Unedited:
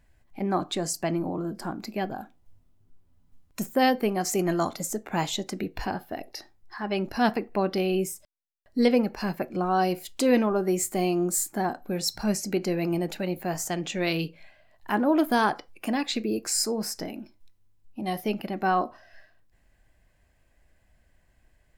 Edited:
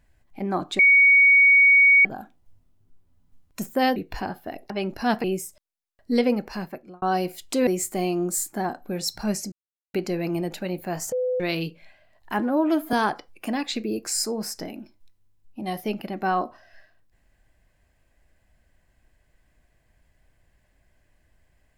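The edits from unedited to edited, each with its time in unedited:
0.79–2.05 bleep 2240 Hz -11.5 dBFS
3.96–5.61 cut
6.35–6.85 cut
7.39–7.91 cut
9.11–9.69 fade out
10.34–10.67 cut
12.52 insert silence 0.42 s
13.7–13.98 bleep 504 Hz -21.5 dBFS
14.97–15.33 stretch 1.5×

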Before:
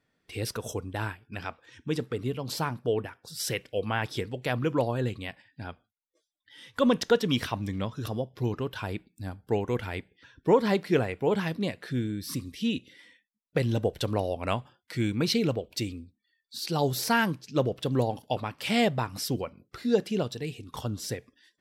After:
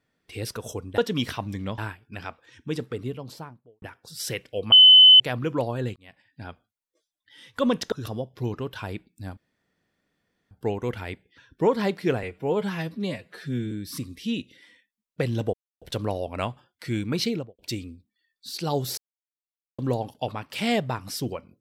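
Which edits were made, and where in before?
2.09–3.02 studio fade out
3.92–4.4 bleep 3030 Hz -8 dBFS
5.16–5.62 fade in
7.12–7.92 move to 0.98
9.37 insert room tone 1.14 s
11.09–12.08 stretch 1.5×
13.9 insert silence 0.28 s
15.32–15.67 studio fade out
17.06–17.87 mute

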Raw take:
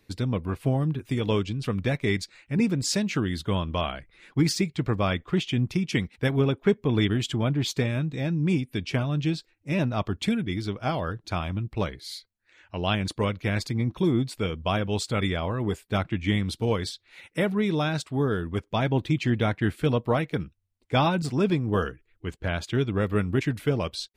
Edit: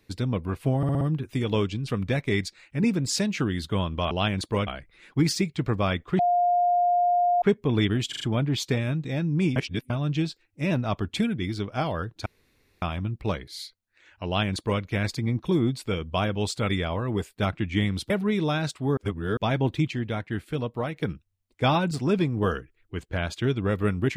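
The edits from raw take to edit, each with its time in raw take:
0.77 stutter 0.06 s, 5 plays
5.39–6.62 bleep 707 Hz -18.5 dBFS
7.29 stutter 0.04 s, 4 plays
8.64–8.98 reverse
11.34 insert room tone 0.56 s
12.78–13.34 copy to 3.87
16.62–17.41 cut
18.28–18.68 reverse
19.22–20.27 gain -5.5 dB

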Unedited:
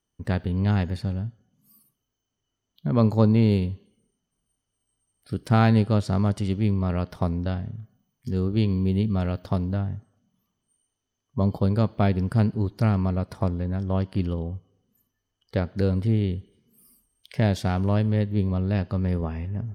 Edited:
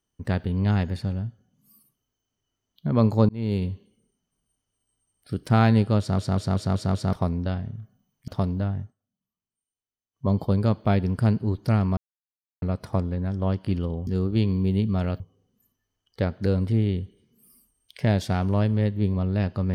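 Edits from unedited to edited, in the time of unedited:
3.29–3.68 fade in
5.99 stutter in place 0.19 s, 6 plays
8.28–9.41 move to 14.55
9.94–11.39 dip -17.5 dB, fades 0.14 s
13.1 insert silence 0.65 s

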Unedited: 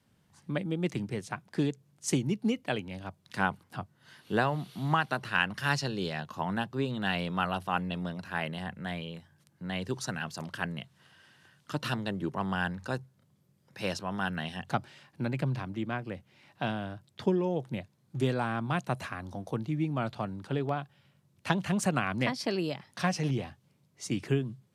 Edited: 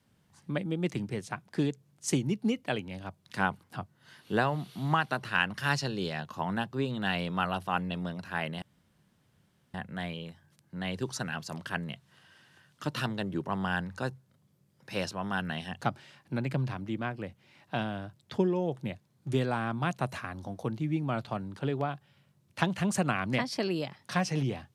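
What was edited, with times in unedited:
8.62 insert room tone 1.12 s

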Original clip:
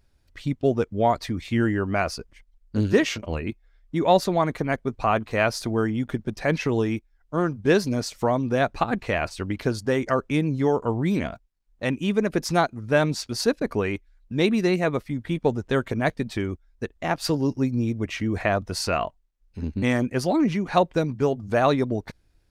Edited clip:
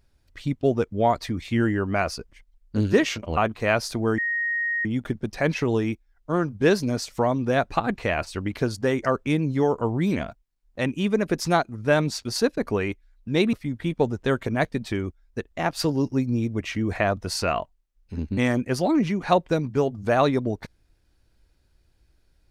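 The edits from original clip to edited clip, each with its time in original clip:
3.37–5.08 cut
5.89 add tone 1870 Hz -22.5 dBFS 0.67 s
14.57–14.98 cut

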